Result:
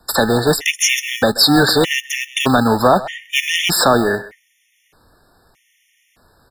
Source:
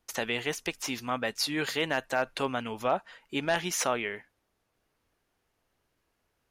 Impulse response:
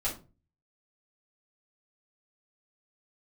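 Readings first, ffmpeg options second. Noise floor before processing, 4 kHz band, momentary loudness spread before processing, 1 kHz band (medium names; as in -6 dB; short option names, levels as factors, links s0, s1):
-78 dBFS, +18.0 dB, 5 LU, +14.5 dB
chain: -filter_complex "[0:a]asplit=2[s0][s1];[s1]adelay=130,highpass=300,lowpass=3400,asoftclip=type=hard:threshold=0.0631,volume=0.126[s2];[s0][s2]amix=inputs=2:normalize=0,aresample=32000,aresample=44100,acrossover=split=390|3000[s3][s4][s5];[s4]acompressor=threshold=0.0158:ratio=2[s6];[s3][s6][s5]amix=inputs=3:normalize=0,acrossover=split=360|690|6400[s7][s8][s9][s10];[s7]acrusher=samples=42:mix=1:aa=0.000001[s11];[s11][s8][s9][s10]amix=inputs=4:normalize=0,apsyclip=28.2,afftfilt=real='re*gt(sin(2*PI*0.81*pts/sr)*(1-2*mod(floor(b*sr/1024/1800),2)),0)':imag='im*gt(sin(2*PI*0.81*pts/sr)*(1-2*mod(floor(b*sr/1024/1800),2)),0)':win_size=1024:overlap=0.75,volume=0.562"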